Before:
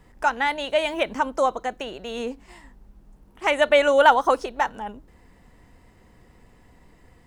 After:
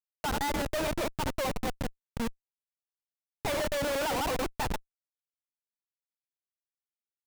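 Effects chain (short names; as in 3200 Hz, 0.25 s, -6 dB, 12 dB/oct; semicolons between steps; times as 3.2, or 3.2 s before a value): reverse delay 0.104 s, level -7 dB; Schmitt trigger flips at -24 dBFS; gain -5.5 dB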